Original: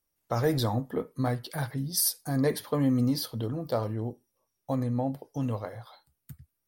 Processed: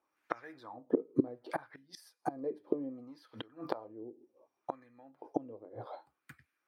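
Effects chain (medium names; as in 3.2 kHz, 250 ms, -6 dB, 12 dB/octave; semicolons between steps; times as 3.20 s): inverted gate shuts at -25 dBFS, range -26 dB; LFO band-pass sine 0.66 Hz 390–1800 Hz; small resonant body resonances 310/2400 Hz, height 11 dB, ringing for 30 ms; trim +14 dB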